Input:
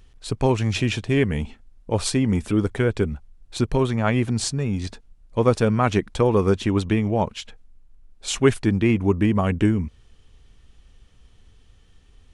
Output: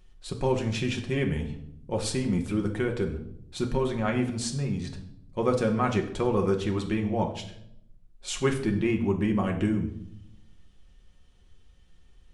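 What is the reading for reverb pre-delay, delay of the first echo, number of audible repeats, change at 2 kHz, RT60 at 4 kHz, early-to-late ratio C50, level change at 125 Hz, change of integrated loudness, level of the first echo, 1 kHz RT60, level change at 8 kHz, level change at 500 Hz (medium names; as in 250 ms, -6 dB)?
5 ms, no echo, no echo, -6.0 dB, 0.55 s, 9.5 dB, -7.5 dB, -6.0 dB, no echo, 0.60 s, -6.5 dB, -5.5 dB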